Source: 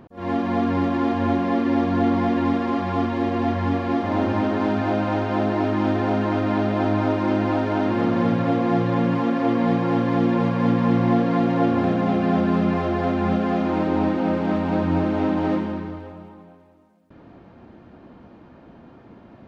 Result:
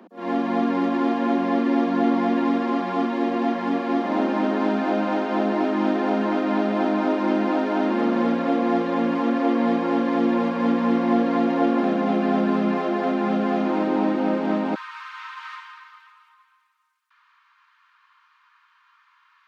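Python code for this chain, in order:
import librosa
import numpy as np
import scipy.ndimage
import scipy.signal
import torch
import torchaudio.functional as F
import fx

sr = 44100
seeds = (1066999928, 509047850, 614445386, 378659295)

y = fx.steep_highpass(x, sr, hz=fx.steps((0.0, 190.0), (14.74, 1000.0)), slope=96)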